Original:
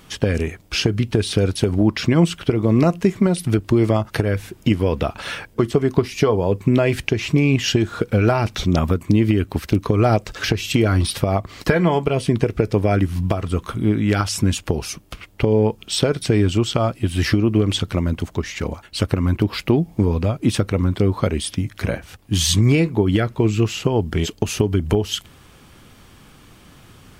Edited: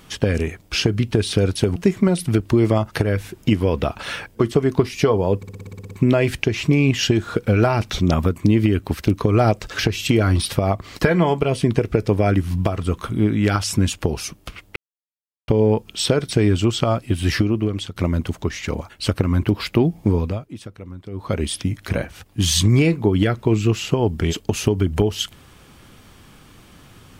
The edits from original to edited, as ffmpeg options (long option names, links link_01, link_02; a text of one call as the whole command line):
ffmpeg -i in.wav -filter_complex "[0:a]asplit=15[link_01][link_02][link_03][link_04][link_05][link_06][link_07][link_08][link_09][link_10][link_11][link_12][link_13][link_14][link_15];[link_01]atrim=end=1.762[link_16];[link_02]atrim=start=2.948:end=6.622[link_17];[link_03]atrim=start=6.558:end=6.622[link_18];[link_04]atrim=start=6.558:end=6.622[link_19];[link_05]atrim=start=6.558:end=6.622[link_20];[link_06]atrim=start=6.558:end=6.622[link_21];[link_07]atrim=start=6.558:end=6.622[link_22];[link_08]atrim=start=6.558:end=6.622[link_23];[link_09]atrim=start=6.558:end=6.622[link_24];[link_10]atrim=start=6.558:end=6.622[link_25];[link_11]atrim=start=6.558:end=15.41,asetpts=PTS-STARTPTS,afade=type=out:start_time=8.848:duration=0.004:curve=hsin,apad=pad_dur=0.72[link_26];[link_12]atrim=start=15.41:end=17.89,asetpts=PTS-STARTPTS,afade=type=in:duration=0.004:curve=hsin,afade=type=out:start_time=1.82:duration=0.66:silence=0.251189[link_27];[link_13]atrim=start=17.89:end=20.42,asetpts=PTS-STARTPTS,afade=type=in:duration=0.004:curve=hsin:silence=0.251189,afade=type=out:start_time=2.2:duration=0.33:silence=0.141254[link_28];[link_14]atrim=start=20.42:end=21.04,asetpts=PTS-STARTPTS,volume=-17dB[link_29];[link_15]atrim=start=21.04,asetpts=PTS-STARTPTS,afade=type=in:duration=0.33:silence=0.141254[link_30];[link_16][link_17]acrossfade=duration=0.004:curve1=hsin:curve2=hsin[link_31];[link_31][link_18]acrossfade=duration=0.004:curve1=hsin:curve2=hsin[link_32];[link_32][link_19]acrossfade=duration=0.004:curve1=hsin:curve2=hsin[link_33];[link_33][link_20]acrossfade=duration=0.004:curve1=hsin:curve2=hsin[link_34];[link_34][link_21]acrossfade=duration=0.004:curve1=hsin:curve2=hsin[link_35];[link_35][link_22]acrossfade=duration=0.004:curve1=hsin:curve2=hsin[link_36];[link_36][link_23]acrossfade=duration=0.004:curve1=hsin:curve2=hsin[link_37];[link_37][link_24]acrossfade=duration=0.004:curve1=hsin:curve2=hsin[link_38];[link_38][link_25]acrossfade=duration=0.004:curve1=hsin:curve2=hsin[link_39];[link_26][link_27][link_28][link_29][link_30]concat=n=5:v=0:a=1[link_40];[link_39][link_40]acrossfade=duration=0.004:curve1=hsin:curve2=hsin" out.wav